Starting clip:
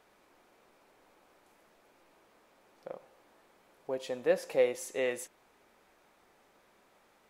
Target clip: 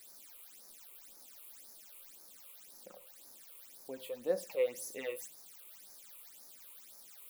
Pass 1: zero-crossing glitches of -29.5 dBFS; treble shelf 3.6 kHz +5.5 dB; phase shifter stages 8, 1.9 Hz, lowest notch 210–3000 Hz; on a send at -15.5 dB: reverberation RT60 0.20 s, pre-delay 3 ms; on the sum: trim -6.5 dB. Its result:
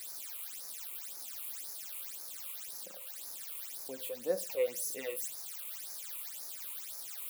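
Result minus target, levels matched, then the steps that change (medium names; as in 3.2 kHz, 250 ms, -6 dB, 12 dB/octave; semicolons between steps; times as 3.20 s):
zero-crossing glitches: distortion +11 dB
change: zero-crossing glitches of -41 dBFS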